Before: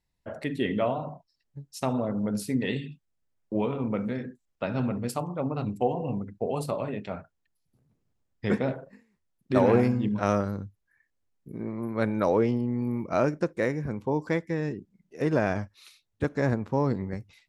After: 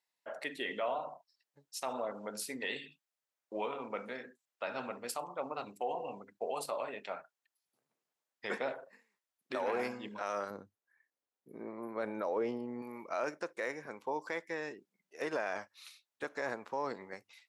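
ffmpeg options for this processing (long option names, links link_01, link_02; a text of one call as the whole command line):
ffmpeg -i in.wav -filter_complex "[0:a]asettb=1/sr,asplit=3[link_01][link_02][link_03];[link_01]atrim=end=10.504[link_04];[link_02]atrim=start=10.5:end=12.82,asetpts=PTS-STARTPTS,afade=type=in:duration=0.004:curve=qsin,afade=type=out:start_time=2.316:duration=0.004:curve=qsin,tiltshelf=frequency=840:gain=6.5[link_05];[link_03]atrim=start=12.816[link_06];[link_04][link_05]acrossfade=duration=0.004:curve1=hsin:curve2=qsin[link_07];[link_07][link_06]acrossfade=duration=0.004:curve1=qsin:curve2=hsin,highpass=670,alimiter=level_in=0.5dB:limit=-24dB:level=0:latency=1:release=33,volume=-0.5dB,volume=-1dB" out.wav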